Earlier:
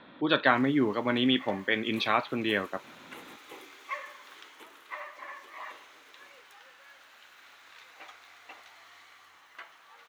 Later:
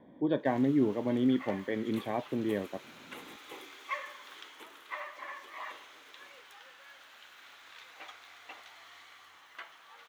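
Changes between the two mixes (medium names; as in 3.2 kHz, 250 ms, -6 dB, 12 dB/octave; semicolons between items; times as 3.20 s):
speech: add boxcar filter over 33 samples; first sound: add peaking EQ 3.3 kHz +4 dB 0.24 oct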